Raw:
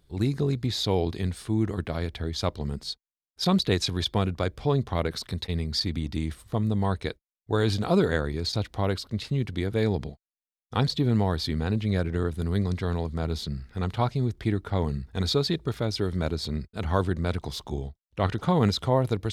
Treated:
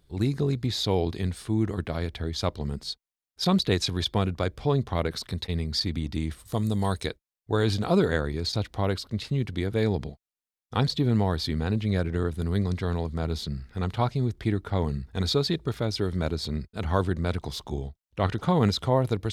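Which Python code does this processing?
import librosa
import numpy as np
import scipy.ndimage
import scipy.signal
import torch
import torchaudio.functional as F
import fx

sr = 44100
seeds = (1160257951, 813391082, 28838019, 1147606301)

y = fx.bass_treble(x, sr, bass_db=-1, treble_db=14, at=(6.45, 7.06))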